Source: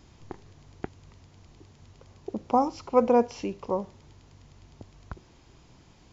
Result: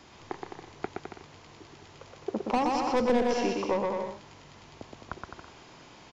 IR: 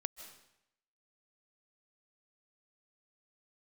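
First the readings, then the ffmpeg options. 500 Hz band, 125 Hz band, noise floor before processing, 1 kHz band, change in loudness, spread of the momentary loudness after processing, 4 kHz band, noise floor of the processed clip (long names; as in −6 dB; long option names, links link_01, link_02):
−2.0 dB, −1.5 dB, −57 dBFS, −1.5 dB, −3.5 dB, 22 LU, +8.5 dB, −53 dBFS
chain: -filter_complex "[0:a]asplit=2[link_01][link_02];[link_02]highpass=frequency=720:poles=1,volume=22dB,asoftclip=type=tanh:threshold=-7.5dB[link_03];[link_01][link_03]amix=inputs=2:normalize=0,lowpass=frequency=3000:poles=1,volume=-6dB,aecho=1:1:120|210|277.5|328.1|366.1:0.631|0.398|0.251|0.158|0.1,acrossover=split=310|3000[link_04][link_05][link_06];[link_05]acompressor=threshold=-19dB:ratio=6[link_07];[link_04][link_07][link_06]amix=inputs=3:normalize=0,volume=-6dB"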